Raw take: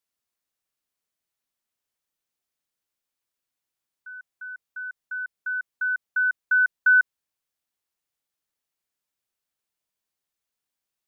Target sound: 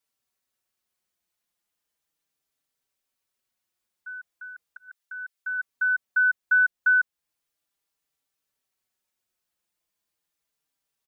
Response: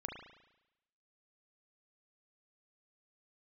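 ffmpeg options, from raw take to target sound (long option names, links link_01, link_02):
-filter_complex "[0:a]asplit=2[link_01][link_02];[link_02]acompressor=threshold=-31dB:ratio=6,volume=1.5dB[link_03];[link_01][link_03]amix=inputs=2:normalize=0,asplit=3[link_04][link_05][link_06];[link_04]afade=type=out:start_time=4.88:duration=0.02[link_07];[link_05]highpass=frequency=1300:poles=1,afade=type=in:start_time=4.88:duration=0.02,afade=type=out:start_time=5.57:duration=0.02[link_08];[link_06]afade=type=in:start_time=5.57:duration=0.02[link_09];[link_07][link_08][link_09]amix=inputs=3:normalize=0,asplit=2[link_10][link_11];[link_11]adelay=4.7,afreqshift=-0.36[link_12];[link_10][link_12]amix=inputs=2:normalize=1,volume=-1dB"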